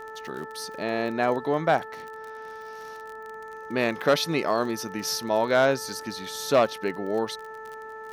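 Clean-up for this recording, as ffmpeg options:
ffmpeg -i in.wav -af "adeclick=threshold=4,bandreject=frequency=439.4:width_type=h:width=4,bandreject=frequency=878.8:width_type=h:width=4,bandreject=frequency=1318.2:width_type=h:width=4,bandreject=frequency=1757.6:width_type=h:width=4" out.wav

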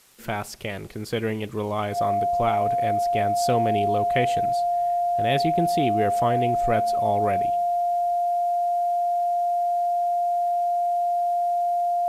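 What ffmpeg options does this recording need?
ffmpeg -i in.wav -af "adeclick=threshold=4,bandreject=frequency=700:width=30,agate=range=-21dB:threshold=-21dB" out.wav

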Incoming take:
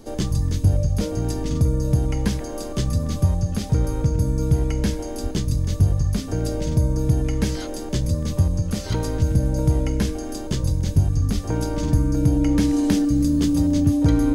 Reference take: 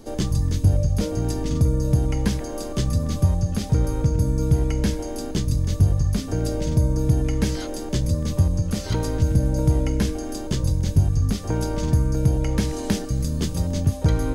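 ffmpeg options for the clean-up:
ffmpeg -i in.wav -filter_complex "[0:a]bandreject=frequency=290:width=30,asplit=3[link_01][link_02][link_03];[link_01]afade=type=out:start_time=5.22:duration=0.02[link_04];[link_02]highpass=frequency=140:width=0.5412,highpass=frequency=140:width=1.3066,afade=type=in:start_time=5.22:duration=0.02,afade=type=out:start_time=5.34:duration=0.02[link_05];[link_03]afade=type=in:start_time=5.34:duration=0.02[link_06];[link_04][link_05][link_06]amix=inputs=3:normalize=0,asplit=3[link_07][link_08][link_09];[link_07]afade=type=out:start_time=11.34:duration=0.02[link_10];[link_08]highpass=frequency=140:width=0.5412,highpass=frequency=140:width=1.3066,afade=type=in:start_time=11.34:duration=0.02,afade=type=out:start_time=11.46:duration=0.02[link_11];[link_09]afade=type=in:start_time=11.46:duration=0.02[link_12];[link_10][link_11][link_12]amix=inputs=3:normalize=0,asplit=3[link_13][link_14][link_15];[link_13]afade=type=out:start_time=11.92:duration=0.02[link_16];[link_14]highpass=frequency=140:width=0.5412,highpass=frequency=140:width=1.3066,afade=type=in:start_time=11.92:duration=0.02,afade=type=out:start_time=12.04:duration=0.02[link_17];[link_15]afade=type=in:start_time=12.04:duration=0.02[link_18];[link_16][link_17][link_18]amix=inputs=3:normalize=0" out.wav

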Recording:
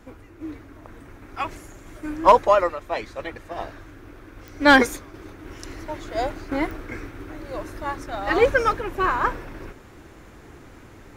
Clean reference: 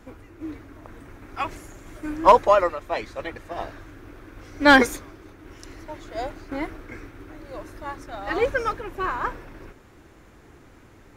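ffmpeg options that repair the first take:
ffmpeg -i in.wav -af "adeclick=threshold=4,asetnsamples=nb_out_samples=441:pad=0,asendcmd='5.14 volume volume -5dB',volume=0dB" out.wav

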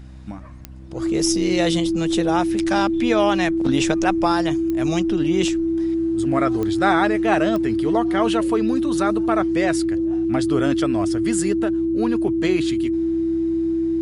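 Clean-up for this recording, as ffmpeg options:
ffmpeg -i in.wav -af "adeclick=threshold=4,bandreject=frequency=64.4:width_type=h:width=4,bandreject=frequency=128.8:width_type=h:width=4,bandreject=frequency=193.2:width_type=h:width=4,bandreject=frequency=257.6:width_type=h:width=4,bandreject=frequency=322:width_type=h:width=4,bandreject=frequency=330:width=30" out.wav

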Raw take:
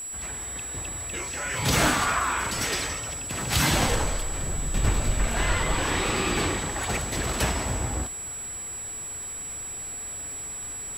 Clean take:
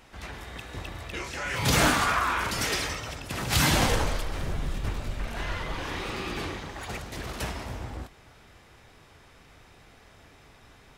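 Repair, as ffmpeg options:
ffmpeg -i in.wav -af "adeclick=threshold=4,bandreject=frequency=7800:width=30,afwtdn=0.0028,asetnsamples=nb_out_samples=441:pad=0,asendcmd='4.74 volume volume -7.5dB',volume=0dB" out.wav

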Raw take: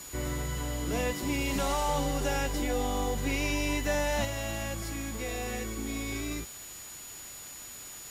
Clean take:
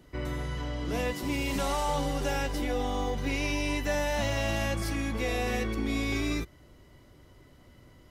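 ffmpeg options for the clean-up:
ffmpeg -i in.wav -af "bandreject=frequency=6900:width=30,afwtdn=0.005,asetnsamples=nb_out_samples=441:pad=0,asendcmd='4.25 volume volume 5.5dB',volume=0dB" out.wav

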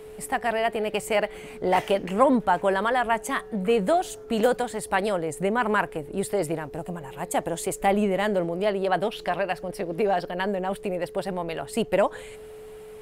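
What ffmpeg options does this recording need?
ffmpeg -i in.wav -af "bandreject=frequency=430:width=30" out.wav

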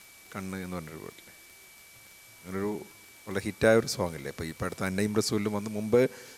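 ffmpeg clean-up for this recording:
ffmpeg -i in.wav -af "adeclick=threshold=4,bandreject=frequency=2300:width=30,afwtdn=0.0022" out.wav

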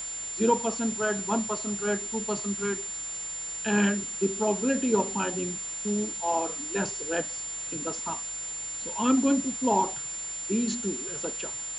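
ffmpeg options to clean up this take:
ffmpeg -i in.wav -af "bandreject=frequency=54.2:width_type=h:width=4,bandreject=frequency=108.4:width_type=h:width=4,bandreject=frequency=162.6:width_type=h:width=4,bandreject=frequency=7200:width=30,afftdn=noise_reduction=30:noise_floor=-36" out.wav

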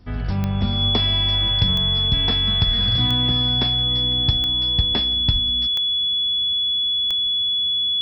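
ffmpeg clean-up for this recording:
ffmpeg -i in.wav -af "adeclick=threshold=4,bandreject=frequency=3400:width=30" out.wav

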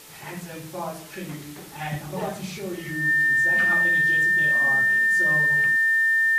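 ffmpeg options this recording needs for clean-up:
ffmpeg -i in.wav -af "bandreject=frequency=436:width_type=h:width=4,bandreject=frequency=872:width_type=h:width=4,bandreject=frequency=1308:width_type=h:width=4,bandreject=frequency=1744:width_type=h:width=4,bandreject=frequency=1800:width=30,afwtdn=0.0056" out.wav

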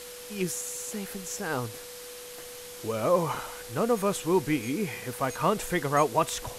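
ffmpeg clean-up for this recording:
ffmpeg -i in.wav -af "bandreject=frequency=490:width=30,afwtdn=0.0071" out.wav

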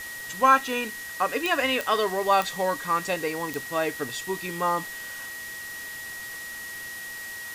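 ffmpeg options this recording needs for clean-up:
ffmpeg -i in.wav -af "adeclick=threshold=4,bandreject=frequency=1900:width=30,afwtdn=0.0089" out.wav

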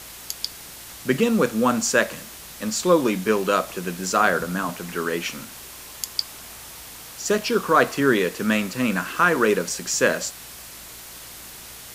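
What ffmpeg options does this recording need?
ffmpeg -i in.wav -af "adeclick=threshold=4,bandreject=frequency=57.5:width_type=h:width=4,bandreject=frequency=115:width_type=h:width=4,bandreject=frequency=172.5:width_type=h:width=4,bandreject=frequency=230:width_type=h:width=4,bandreject=frequency=287.5:width_type=h:width=4,afwtdn=0.011" out.wav

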